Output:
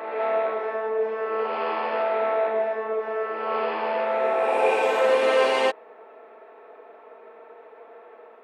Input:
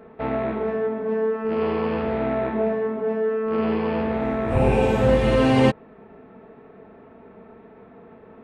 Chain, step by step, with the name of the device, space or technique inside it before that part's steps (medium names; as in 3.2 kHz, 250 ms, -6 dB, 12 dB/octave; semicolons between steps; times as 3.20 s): ghost voice (reverse; reverberation RT60 1.9 s, pre-delay 33 ms, DRR 0 dB; reverse; high-pass 460 Hz 24 dB/octave)